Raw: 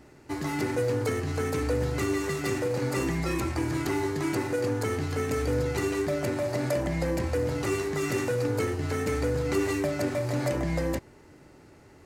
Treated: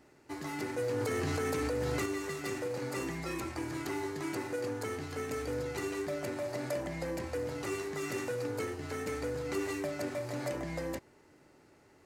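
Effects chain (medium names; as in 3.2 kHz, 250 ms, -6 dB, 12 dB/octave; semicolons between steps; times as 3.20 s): bass shelf 160 Hz -9.5 dB; 0.79–2.06 s: level flattener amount 100%; trim -6.5 dB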